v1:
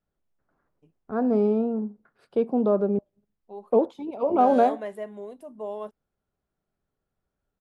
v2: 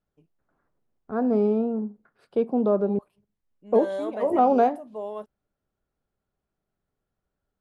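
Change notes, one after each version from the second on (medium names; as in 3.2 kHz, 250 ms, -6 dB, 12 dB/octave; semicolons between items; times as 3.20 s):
second voice: entry -0.65 s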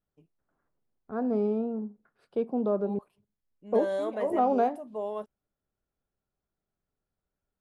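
first voice -5.5 dB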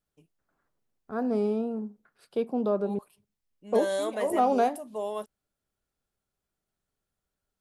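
master: remove low-pass 1.2 kHz 6 dB/octave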